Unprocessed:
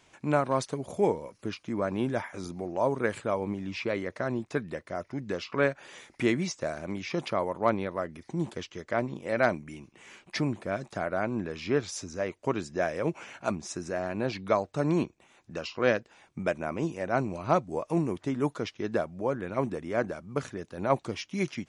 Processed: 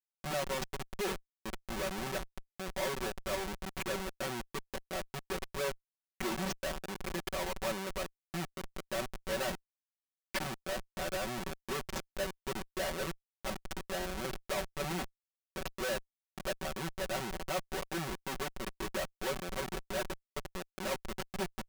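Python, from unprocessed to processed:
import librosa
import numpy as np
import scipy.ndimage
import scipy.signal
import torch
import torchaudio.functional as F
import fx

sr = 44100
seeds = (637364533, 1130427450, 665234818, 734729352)

y = scipy.signal.sosfilt(scipy.signal.butter(2, 87.0, 'highpass', fs=sr, output='sos'), x)
y = fx.hum_notches(y, sr, base_hz=50, count=5)
y = fx.schmitt(y, sr, flips_db=-29.5)
y = fx.low_shelf(y, sr, hz=310.0, db=-11.0)
y = y + 0.94 * np.pad(y, (int(5.3 * sr / 1000.0), 0))[:len(y)]
y = y * 10.0 ** (-2.0 / 20.0)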